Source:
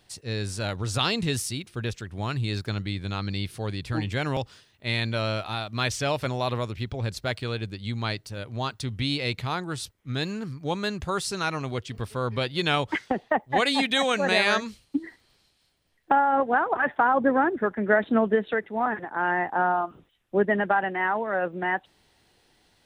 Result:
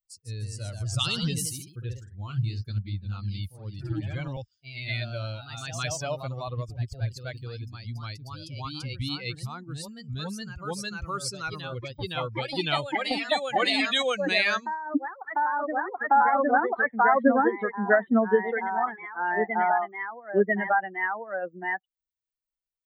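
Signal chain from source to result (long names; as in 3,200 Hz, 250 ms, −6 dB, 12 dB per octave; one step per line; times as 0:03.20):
spectral dynamics exaggerated over time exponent 2
delay with pitch and tempo change per echo 156 ms, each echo +1 semitone, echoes 2, each echo −6 dB
level +3 dB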